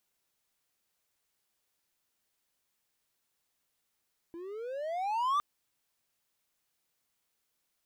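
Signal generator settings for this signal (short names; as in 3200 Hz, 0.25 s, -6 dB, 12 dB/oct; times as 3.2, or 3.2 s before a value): gliding synth tone triangle, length 1.06 s, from 329 Hz, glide +22.5 st, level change +16 dB, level -23 dB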